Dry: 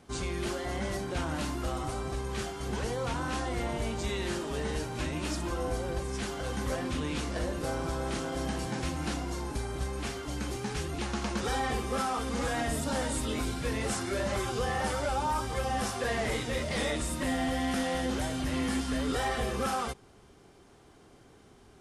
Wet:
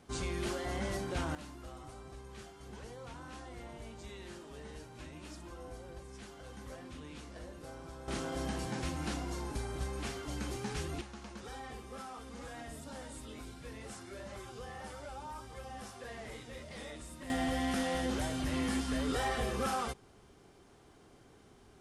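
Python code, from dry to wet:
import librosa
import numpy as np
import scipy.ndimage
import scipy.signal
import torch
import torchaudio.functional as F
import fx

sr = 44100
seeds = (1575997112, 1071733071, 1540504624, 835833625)

y = fx.gain(x, sr, db=fx.steps((0.0, -3.0), (1.35, -15.0), (8.08, -4.0), (11.01, -15.0), (17.3, -3.0)))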